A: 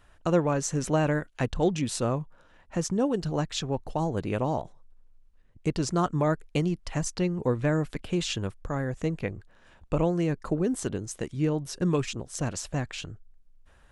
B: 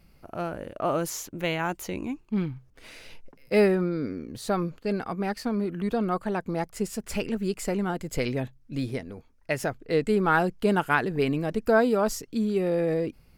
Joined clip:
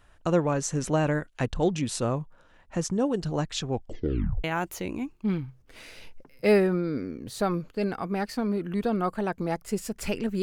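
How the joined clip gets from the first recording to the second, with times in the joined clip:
A
3.69 s: tape stop 0.75 s
4.44 s: go over to B from 1.52 s

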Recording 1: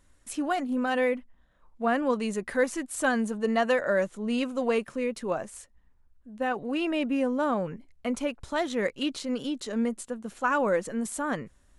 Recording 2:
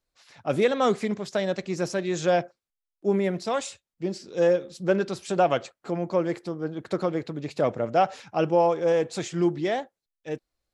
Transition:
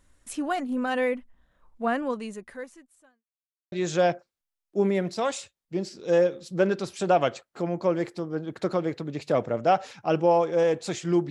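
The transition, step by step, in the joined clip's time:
recording 1
1.87–3.25 s: fade out quadratic
3.25–3.72 s: mute
3.72 s: go over to recording 2 from 2.01 s

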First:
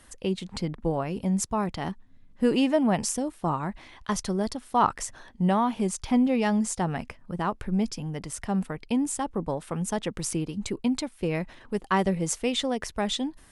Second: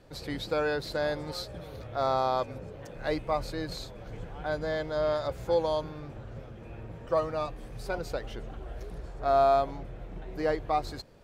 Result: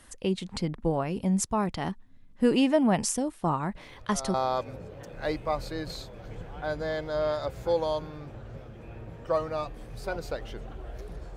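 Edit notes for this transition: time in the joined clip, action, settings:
first
3.75 s: add second from 1.57 s 0.59 s -11.5 dB
4.34 s: go over to second from 2.16 s

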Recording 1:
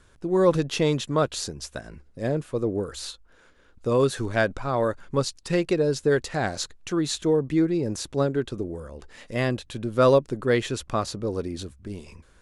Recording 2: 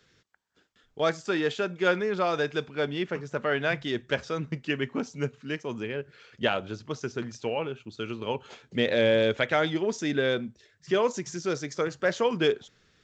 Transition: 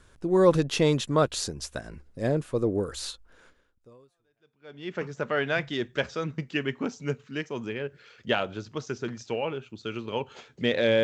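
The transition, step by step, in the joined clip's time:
recording 1
4.22 s: go over to recording 2 from 2.36 s, crossfade 1.48 s exponential

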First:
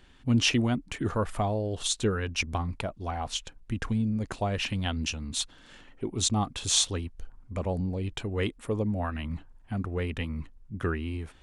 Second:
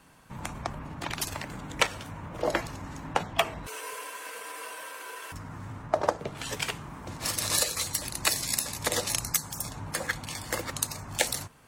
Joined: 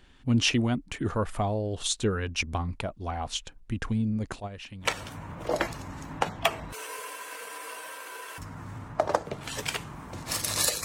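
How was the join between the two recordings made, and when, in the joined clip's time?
first
4.40–4.92 s: gate -25 dBFS, range -12 dB
4.86 s: go over to second from 1.80 s, crossfade 0.12 s

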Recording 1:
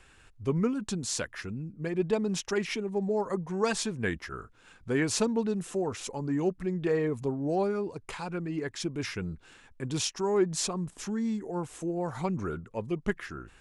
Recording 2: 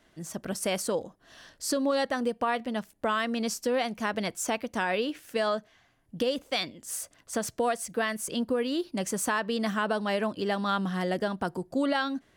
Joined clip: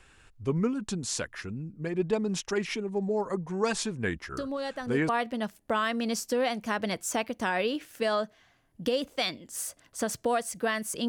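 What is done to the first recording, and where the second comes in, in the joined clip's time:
recording 1
4.37 s: add recording 2 from 1.71 s 0.72 s -7 dB
5.09 s: go over to recording 2 from 2.43 s

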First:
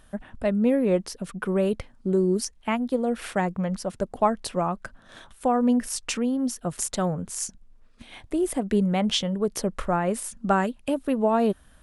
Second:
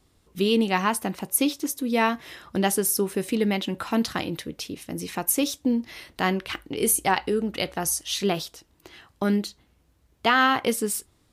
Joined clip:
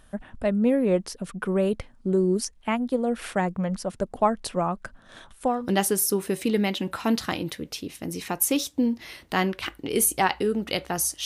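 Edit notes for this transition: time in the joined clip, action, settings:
first
5.57 s: go over to second from 2.44 s, crossfade 0.24 s

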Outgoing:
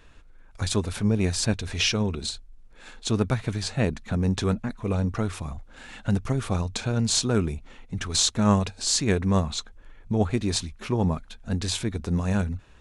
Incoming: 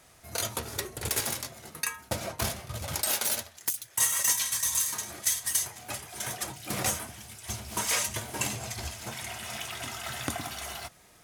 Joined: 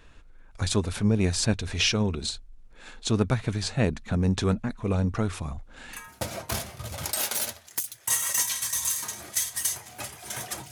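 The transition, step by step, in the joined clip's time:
outgoing
6.00 s: go over to incoming from 1.90 s, crossfade 0.18 s

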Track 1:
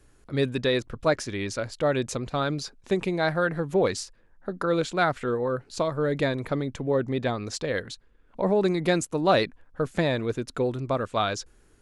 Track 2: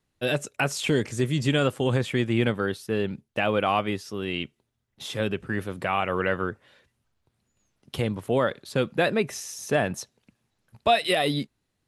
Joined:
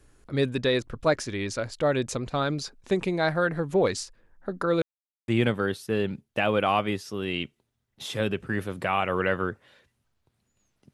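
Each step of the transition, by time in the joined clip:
track 1
4.82–5.28 s: mute
5.28 s: go over to track 2 from 2.28 s

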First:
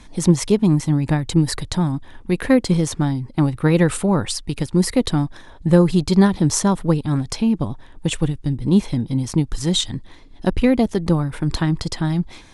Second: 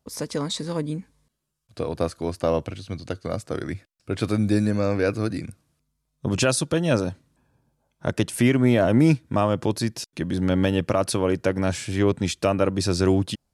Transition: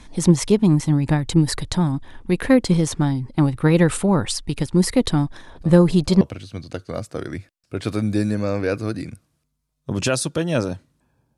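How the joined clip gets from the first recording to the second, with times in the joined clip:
first
5.55 s: add second from 1.91 s 0.66 s -16.5 dB
6.21 s: go over to second from 2.57 s

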